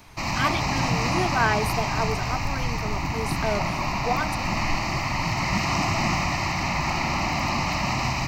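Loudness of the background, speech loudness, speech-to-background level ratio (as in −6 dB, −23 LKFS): −25.5 LKFS, −30.0 LKFS, −4.5 dB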